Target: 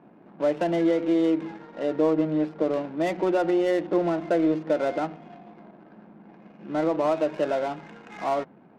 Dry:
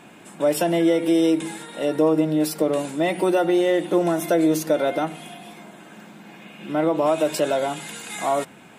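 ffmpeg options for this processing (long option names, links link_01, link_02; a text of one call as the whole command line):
ffmpeg -i in.wav -af "highpass=130,lowpass=2800,adynamicsmooth=sensitivity=4:basefreq=680,volume=-3.5dB" out.wav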